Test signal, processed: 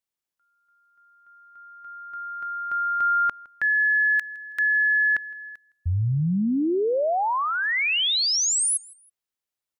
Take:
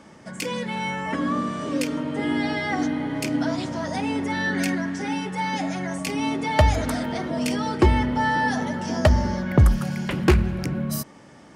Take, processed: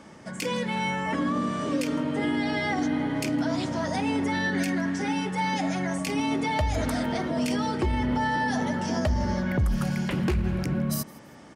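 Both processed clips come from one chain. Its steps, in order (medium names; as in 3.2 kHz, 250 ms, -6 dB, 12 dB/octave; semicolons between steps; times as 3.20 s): dynamic bell 1.4 kHz, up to -3 dB, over -32 dBFS, Q 1.8; peak limiter -18 dBFS; feedback delay 162 ms, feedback 31%, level -23.5 dB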